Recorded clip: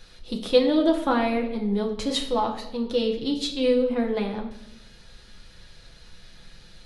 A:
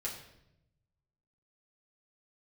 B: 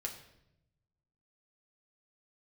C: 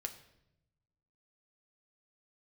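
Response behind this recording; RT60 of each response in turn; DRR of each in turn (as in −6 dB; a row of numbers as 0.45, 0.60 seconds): B; 0.85, 0.85, 0.85 seconds; −5.5, 0.5, 5.0 decibels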